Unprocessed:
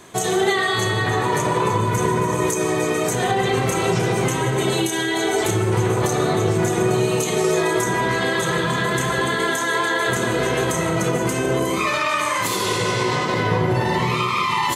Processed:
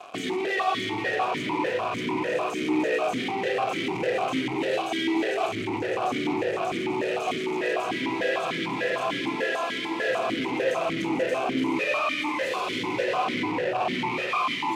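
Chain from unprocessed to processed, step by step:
0:11.56–0:11.99: comb filter 7.1 ms, depth 64%
fuzz pedal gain 38 dB, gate −42 dBFS
formant filter that steps through the vowels 6.7 Hz

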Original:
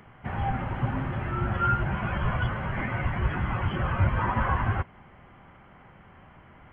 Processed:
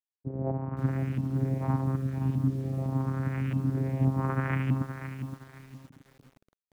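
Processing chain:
hold until the input has moved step −40 dBFS
time-frequency box erased 0:01.96–0:02.46, 230–2,200 Hz
channel vocoder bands 4, saw 133 Hz
auto-filter low-pass saw up 0.85 Hz 230–3,000 Hz
hum removal 204.5 Hz, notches 39
feedback echo at a low word length 518 ms, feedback 35%, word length 8 bits, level −9 dB
level −1.5 dB

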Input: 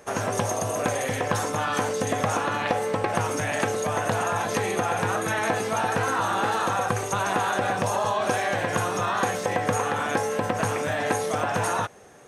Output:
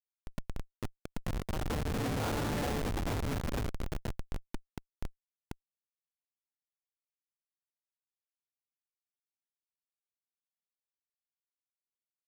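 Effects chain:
source passing by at 0:02.52, 14 m/s, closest 11 metres
dynamic equaliser 250 Hz, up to +6 dB, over −49 dBFS, Q 2.8
comparator with hysteresis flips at −23.5 dBFS

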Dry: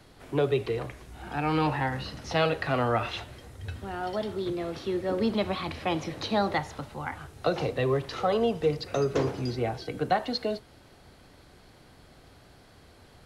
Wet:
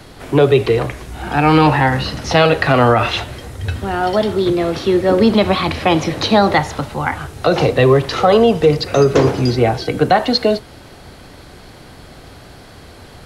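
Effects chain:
boost into a limiter +16.5 dB
level −1 dB

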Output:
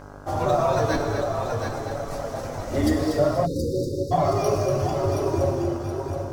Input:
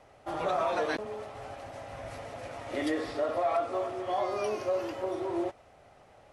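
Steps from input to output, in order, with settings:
sub-octave generator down 2 octaves, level +3 dB
high shelf with overshoot 4,100 Hz +11.5 dB, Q 1.5
echo machine with several playback heads 241 ms, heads first and third, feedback 56%, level −6.5 dB
reverb reduction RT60 1.5 s
tilt shelving filter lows +4.5 dB, about 1,500 Hz
on a send at −2 dB: convolution reverb RT60 2.3 s, pre-delay 9 ms
on the sum: hum with harmonics 50 Hz, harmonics 33, −47 dBFS −3 dB per octave
time-frequency box erased 0:03.45–0:04.11, 570–3,600 Hz
flanger 0.95 Hz, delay 6.9 ms, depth 1.2 ms, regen −33%
linearly interpolated sample-rate reduction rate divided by 2×
level +8 dB

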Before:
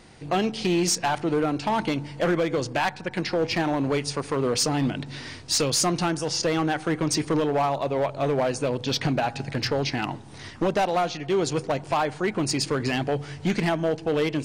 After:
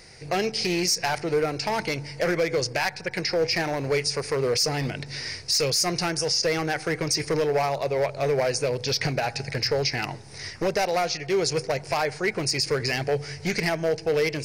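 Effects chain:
drawn EQ curve 130 Hz 0 dB, 180 Hz −4 dB, 280 Hz −10 dB, 430 Hz +3 dB, 1,100 Hz −5 dB, 2,200 Hz +7 dB, 3,300 Hz −5 dB, 5,100 Hz +13 dB, 7,600 Hz +2 dB, 12,000 Hz +11 dB
brickwall limiter −14.5 dBFS, peak gain reduction 10.5 dB

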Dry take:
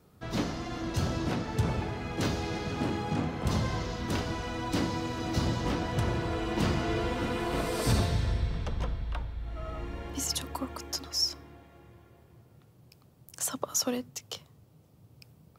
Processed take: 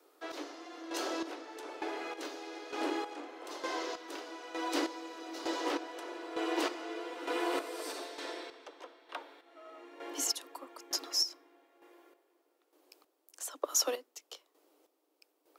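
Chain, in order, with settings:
Butterworth high-pass 290 Hz 96 dB per octave
square-wave tremolo 1.1 Hz, depth 65%, duty 35%

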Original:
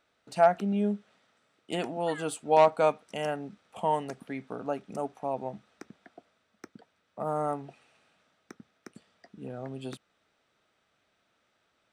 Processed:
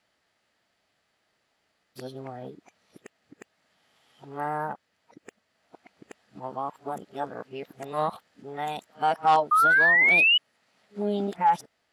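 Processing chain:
played backwards from end to start
formants moved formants +4 semitones
sound drawn into the spectrogram rise, 0:09.51–0:10.38, 1,200–3,000 Hz −19 dBFS

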